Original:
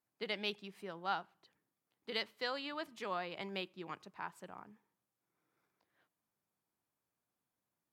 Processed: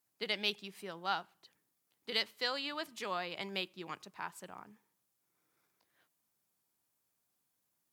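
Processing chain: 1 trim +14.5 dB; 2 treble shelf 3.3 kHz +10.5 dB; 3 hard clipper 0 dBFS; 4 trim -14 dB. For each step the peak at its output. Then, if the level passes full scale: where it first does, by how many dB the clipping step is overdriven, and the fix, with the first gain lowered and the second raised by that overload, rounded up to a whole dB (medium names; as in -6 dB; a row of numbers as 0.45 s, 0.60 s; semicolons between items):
-8.0 dBFS, -3.5 dBFS, -3.5 dBFS, -17.5 dBFS; nothing clips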